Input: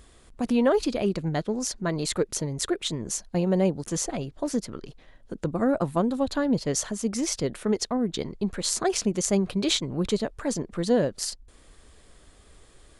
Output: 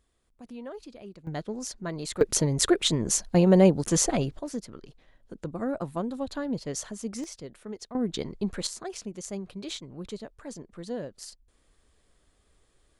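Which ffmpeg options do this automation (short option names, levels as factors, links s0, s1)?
-af "asetnsamples=n=441:p=0,asendcmd='1.27 volume volume -6.5dB;2.21 volume volume 5dB;4.39 volume volume -7dB;7.24 volume volume -14dB;7.95 volume volume -2dB;8.67 volume volume -12.5dB',volume=0.112"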